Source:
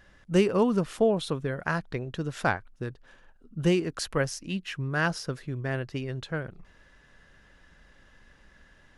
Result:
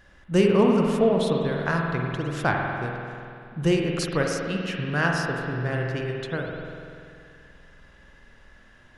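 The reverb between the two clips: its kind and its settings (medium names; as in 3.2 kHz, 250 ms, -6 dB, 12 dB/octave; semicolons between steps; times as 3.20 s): spring tank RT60 2.5 s, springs 48 ms, chirp 75 ms, DRR 0 dB; trim +1.5 dB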